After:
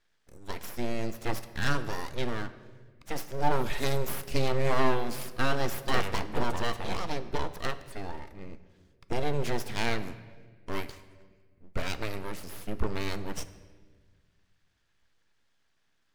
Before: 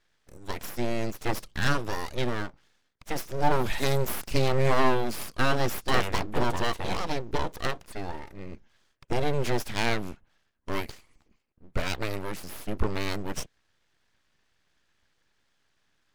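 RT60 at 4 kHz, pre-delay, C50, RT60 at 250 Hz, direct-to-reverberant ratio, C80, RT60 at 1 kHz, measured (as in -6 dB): 1.1 s, 4 ms, 14.0 dB, 2.1 s, 11.0 dB, 15.0 dB, 1.3 s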